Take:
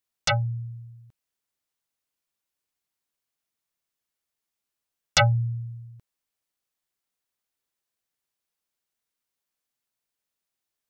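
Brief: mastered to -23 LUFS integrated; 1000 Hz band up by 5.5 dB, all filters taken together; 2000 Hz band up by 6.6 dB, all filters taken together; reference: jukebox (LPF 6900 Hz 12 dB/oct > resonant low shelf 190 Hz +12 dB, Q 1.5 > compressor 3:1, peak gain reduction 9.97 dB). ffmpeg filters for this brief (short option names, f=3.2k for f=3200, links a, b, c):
-af "lowpass=6.9k,lowshelf=f=190:t=q:w=1.5:g=12,equalizer=f=1k:t=o:g=6.5,equalizer=f=2k:t=o:g=6.5,acompressor=threshold=-17dB:ratio=3,volume=-2dB"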